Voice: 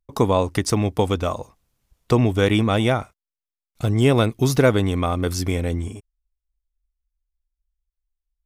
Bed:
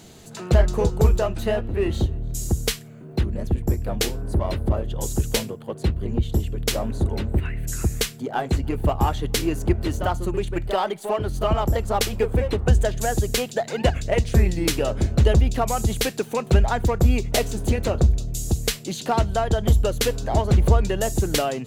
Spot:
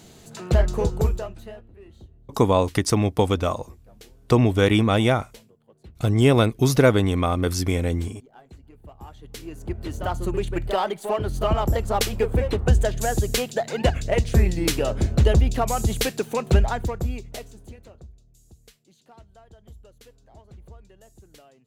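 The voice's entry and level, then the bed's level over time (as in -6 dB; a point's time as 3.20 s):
2.20 s, 0.0 dB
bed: 0.96 s -2 dB
1.79 s -24.5 dB
8.86 s -24.5 dB
10.25 s -0.5 dB
16.58 s -0.5 dB
18.13 s -29 dB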